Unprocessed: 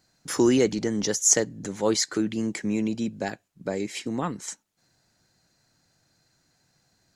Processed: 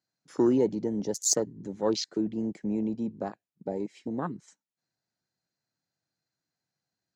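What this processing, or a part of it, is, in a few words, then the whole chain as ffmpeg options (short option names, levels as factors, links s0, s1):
over-cleaned archive recording: -af "highpass=110,lowpass=7100,afwtdn=0.0355,volume=0.708"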